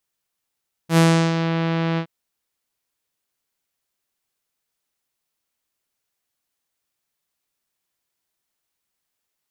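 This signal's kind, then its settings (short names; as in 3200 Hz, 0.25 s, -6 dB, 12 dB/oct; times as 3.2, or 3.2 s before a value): synth note saw E3 24 dB/oct, low-pass 4000 Hz, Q 0.74, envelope 2 oct, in 0.61 s, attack 83 ms, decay 0.35 s, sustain -8.5 dB, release 0.08 s, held 1.09 s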